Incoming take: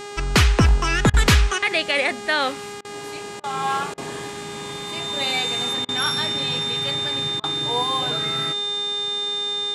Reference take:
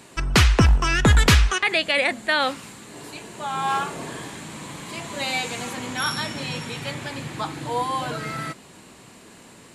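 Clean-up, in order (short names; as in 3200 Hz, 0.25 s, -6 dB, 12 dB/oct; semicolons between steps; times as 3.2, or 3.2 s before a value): de-click; de-hum 408.9 Hz, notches 22; notch 3600 Hz, Q 30; interpolate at 1.1/2.81/3.4/3.94/5.85/7.4, 36 ms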